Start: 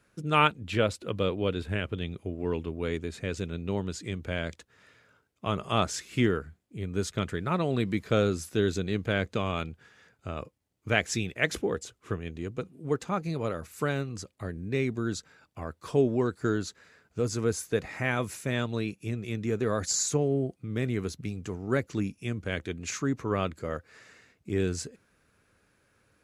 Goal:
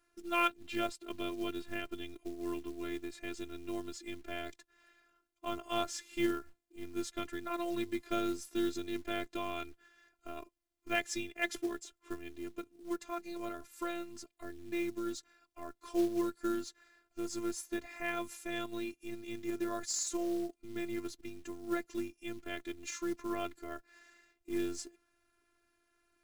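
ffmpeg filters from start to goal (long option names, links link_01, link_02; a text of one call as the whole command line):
ffmpeg -i in.wav -af "afftfilt=real='hypot(re,im)*cos(PI*b)':imag='0':win_size=512:overlap=0.75,acrusher=bits=5:mode=log:mix=0:aa=0.000001,volume=-4dB" out.wav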